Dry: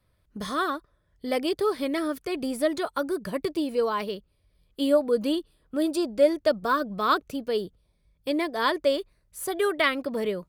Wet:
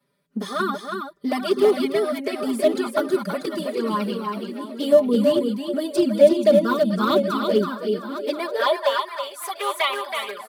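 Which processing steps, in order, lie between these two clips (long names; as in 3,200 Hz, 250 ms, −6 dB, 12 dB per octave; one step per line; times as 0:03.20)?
feedback delay that plays each chunk backwards 516 ms, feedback 53%, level −9 dB
comb filter 5 ms, depth 72%
flanger swept by the level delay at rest 7.2 ms, full sweep at −17.5 dBFS
single-tap delay 325 ms −5.5 dB
in parallel at −12 dB: comparator with hysteresis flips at −18 dBFS
on the sum: high-pass filter sweep 220 Hz → 990 Hz, 0:08.09–0:08.99
level +2.5 dB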